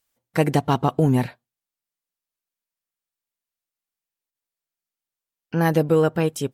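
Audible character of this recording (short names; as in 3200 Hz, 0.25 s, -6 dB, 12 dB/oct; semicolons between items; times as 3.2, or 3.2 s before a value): noise floor -90 dBFS; spectral tilt -6.0 dB/oct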